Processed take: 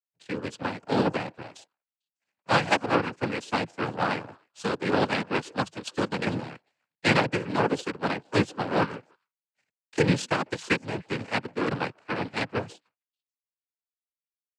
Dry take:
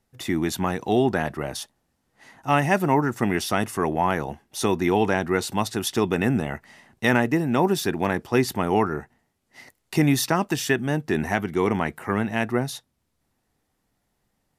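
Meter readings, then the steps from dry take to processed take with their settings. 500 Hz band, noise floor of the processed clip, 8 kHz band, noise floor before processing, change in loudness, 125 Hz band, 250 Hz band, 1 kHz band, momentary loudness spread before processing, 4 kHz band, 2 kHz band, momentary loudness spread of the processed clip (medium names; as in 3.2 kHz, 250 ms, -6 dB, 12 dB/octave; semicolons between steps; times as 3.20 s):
-4.5 dB, under -85 dBFS, -10.5 dB, -74 dBFS, -4.5 dB, -5.5 dB, -6.5 dB, -3.5 dB, 8 LU, -1.5 dB, -2.0 dB, 11 LU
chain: repeats whose band climbs or falls 149 ms, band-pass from 480 Hz, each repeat 1.4 oct, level -10.5 dB; power-law waveshaper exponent 2; noise-vocoded speech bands 8; trim +5 dB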